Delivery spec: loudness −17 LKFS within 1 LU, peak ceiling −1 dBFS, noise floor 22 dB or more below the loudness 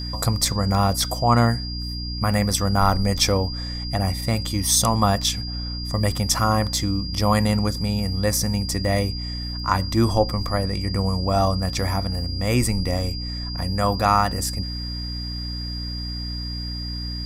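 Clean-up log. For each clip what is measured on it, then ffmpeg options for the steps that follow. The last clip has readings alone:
mains hum 60 Hz; hum harmonics up to 300 Hz; level of the hum −28 dBFS; interfering tone 4,800 Hz; level of the tone −32 dBFS; integrated loudness −22.5 LKFS; sample peak −3.0 dBFS; target loudness −17.0 LKFS
→ -af "bandreject=frequency=60:width_type=h:width=6,bandreject=frequency=120:width_type=h:width=6,bandreject=frequency=180:width_type=h:width=6,bandreject=frequency=240:width_type=h:width=6,bandreject=frequency=300:width_type=h:width=6"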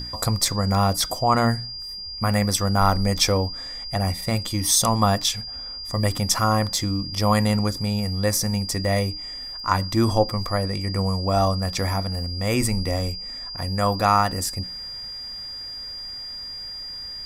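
mains hum none found; interfering tone 4,800 Hz; level of the tone −32 dBFS
→ -af "bandreject=frequency=4800:width=30"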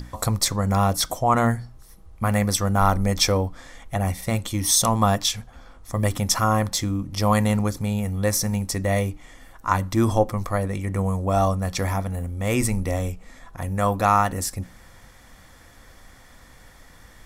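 interfering tone none found; integrated loudness −23.0 LKFS; sample peak −3.5 dBFS; target loudness −17.0 LKFS
→ -af "volume=6dB,alimiter=limit=-1dB:level=0:latency=1"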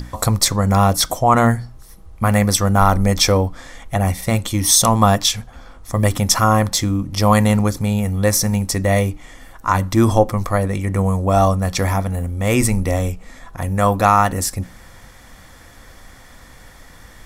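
integrated loudness −17.0 LKFS; sample peak −1.0 dBFS; background noise floor −43 dBFS

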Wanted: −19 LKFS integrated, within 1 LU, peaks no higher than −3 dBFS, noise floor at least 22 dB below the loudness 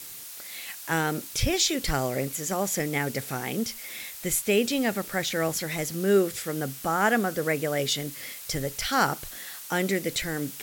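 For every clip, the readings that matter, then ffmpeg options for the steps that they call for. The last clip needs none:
background noise floor −41 dBFS; target noise floor −50 dBFS; integrated loudness −27.5 LKFS; sample peak −9.5 dBFS; target loudness −19.0 LKFS
→ -af "afftdn=noise_reduction=9:noise_floor=-41"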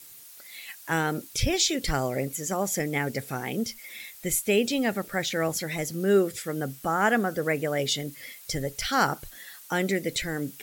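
background noise floor −48 dBFS; target noise floor −50 dBFS
→ -af "afftdn=noise_reduction=6:noise_floor=-48"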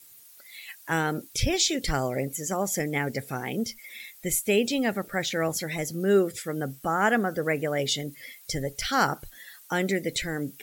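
background noise floor −52 dBFS; integrated loudness −27.0 LKFS; sample peak −9.5 dBFS; target loudness −19.0 LKFS
→ -af "volume=8dB,alimiter=limit=-3dB:level=0:latency=1"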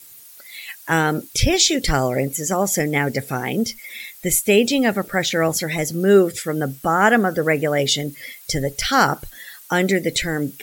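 integrated loudness −19.5 LKFS; sample peak −3.0 dBFS; background noise floor −44 dBFS

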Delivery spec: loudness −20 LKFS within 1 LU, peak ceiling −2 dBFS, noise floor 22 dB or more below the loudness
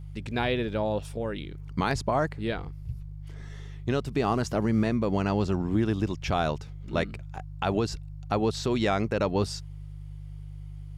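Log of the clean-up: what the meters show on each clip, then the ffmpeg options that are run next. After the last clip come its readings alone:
mains hum 50 Hz; hum harmonics up to 150 Hz; level of the hum −37 dBFS; integrated loudness −28.5 LKFS; sample peak −14.5 dBFS; target loudness −20.0 LKFS
→ -af "bandreject=frequency=50:width_type=h:width=4,bandreject=frequency=100:width_type=h:width=4,bandreject=frequency=150:width_type=h:width=4"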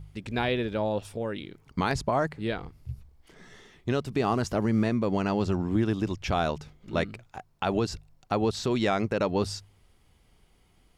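mains hum none found; integrated loudness −29.0 LKFS; sample peak −14.5 dBFS; target loudness −20.0 LKFS
→ -af "volume=9dB"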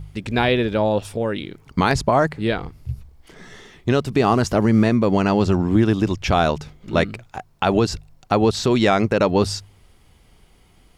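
integrated loudness −20.0 LKFS; sample peak −5.5 dBFS; background noise floor −54 dBFS

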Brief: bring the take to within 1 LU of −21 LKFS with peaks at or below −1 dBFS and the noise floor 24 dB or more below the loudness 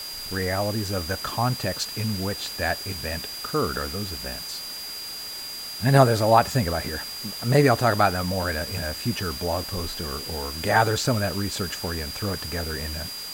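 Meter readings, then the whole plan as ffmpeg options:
interfering tone 4,800 Hz; level of the tone −34 dBFS; background noise floor −35 dBFS; target noise floor −49 dBFS; integrated loudness −25.0 LKFS; sample peak −3.5 dBFS; target loudness −21.0 LKFS
→ -af "bandreject=frequency=4800:width=30"
-af "afftdn=noise_reduction=14:noise_floor=-35"
-af "volume=4dB,alimiter=limit=-1dB:level=0:latency=1"

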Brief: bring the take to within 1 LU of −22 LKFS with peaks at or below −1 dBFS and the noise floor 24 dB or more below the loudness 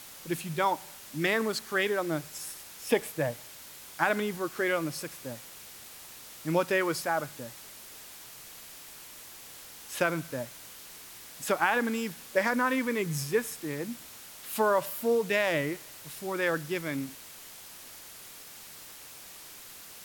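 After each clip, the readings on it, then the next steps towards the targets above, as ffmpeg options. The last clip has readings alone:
background noise floor −48 dBFS; target noise floor −55 dBFS; integrated loudness −30.5 LKFS; sample peak −9.5 dBFS; target loudness −22.0 LKFS
→ -af "afftdn=noise_reduction=7:noise_floor=-48"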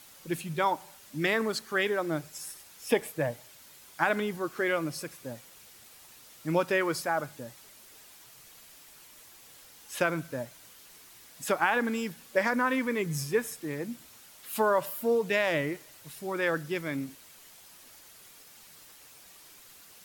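background noise floor −54 dBFS; target noise floor −55 dBFS
→ -af "afftdn=noise_reduction=6:noise_floor=-54"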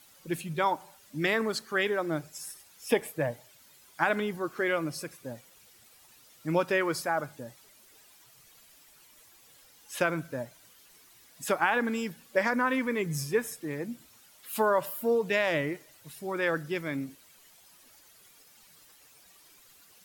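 background noise floor −58 dBFS; integrated loudness −30.0 LKFS; sample peak −9.5 dBFS; target loudness −22.0 LKFS
→ -af "volume=8dB"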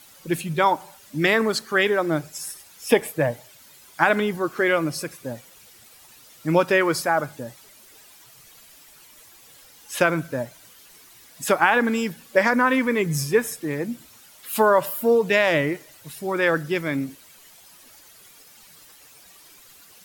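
integrated loudness −22.0 LKFS; sample peak −1.5 dBFS; background noise floor −50 dBFS

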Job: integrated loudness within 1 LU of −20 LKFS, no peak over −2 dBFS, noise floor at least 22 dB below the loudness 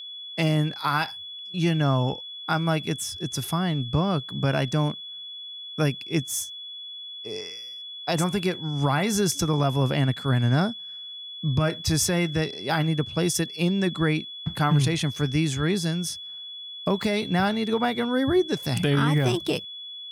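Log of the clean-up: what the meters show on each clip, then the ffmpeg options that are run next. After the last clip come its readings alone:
interfering tone 3,400 Hz; level of the tone −36 dBFS; integrated loudness −25.0 LKFS; sample peak −12.5 dBFS; target loudness −20.0 LKFS
→ -af "bandreject=frequency=3400:width=30"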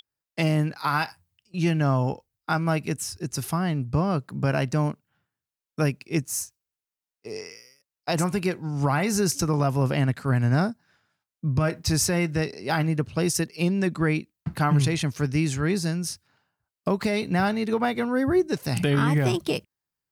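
interfering tone none found; integrated loudness −25.0 LKFS; sample peak −12.5 dBFS; target loudness −20.0 LKFS
→ -af "volume=5dB"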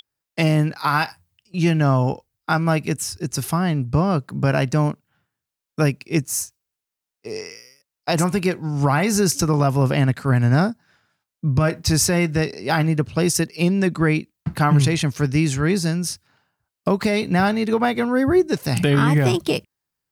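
integrated loudness −20.0 LKFS; sample peak −7.5 dBFS; background noise floor −86 dBFS

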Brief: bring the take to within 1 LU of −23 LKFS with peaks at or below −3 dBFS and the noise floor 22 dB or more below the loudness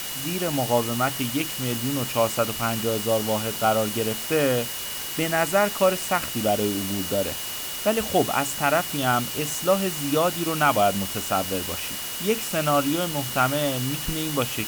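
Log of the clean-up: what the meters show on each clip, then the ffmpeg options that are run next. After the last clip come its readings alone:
interfering tone 2,900 Hz; level of the tone −38 dBFS; background noise floor −32 dBFS; target noise floor −46 dBFS; integrated loudness −24.0 LKFS; sample peak −7.5 dBFS; target loudness −23.0 LKFS
→ -af "bandreject=frequency=2900:width=30"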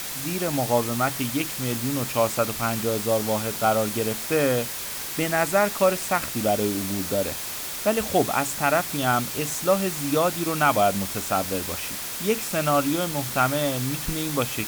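interfering tone none found; background noise floor −32 dBFS; target noise floor −46 dBFS
→ -af "afftdn=noise_reduction=14:noise_floor=-32"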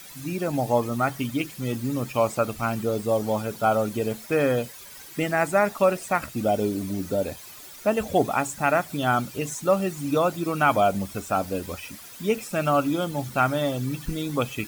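background noise floor −44 dBFS; target noise floor −47 dBFS
→ -af "afftdn=noise_reduction=6:noise_floor=-44"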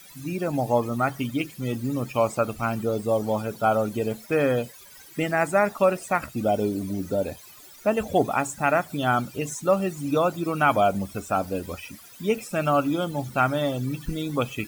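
background noise floor −48 dBFS; integrated loudness −25.5 LKFS; sample peak −8.5 dBFS; target loudness −23.0 LKFS
→ -af "volume=2.5dB"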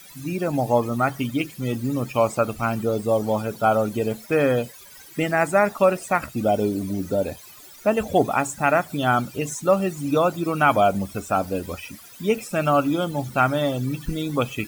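integrated loudness −23.0 LKFS; sample peak −6.0 dBFS; background noise floor −45 dBFS

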